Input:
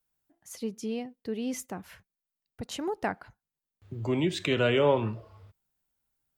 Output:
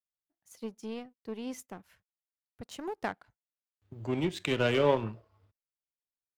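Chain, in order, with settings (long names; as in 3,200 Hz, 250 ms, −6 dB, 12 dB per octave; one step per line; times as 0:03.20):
power curve on the samples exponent 1.4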